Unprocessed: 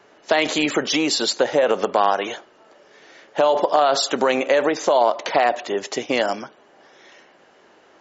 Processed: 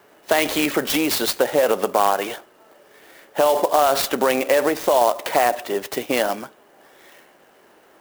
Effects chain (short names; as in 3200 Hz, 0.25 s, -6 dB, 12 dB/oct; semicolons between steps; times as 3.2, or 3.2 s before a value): clock jitter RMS 0.036 ms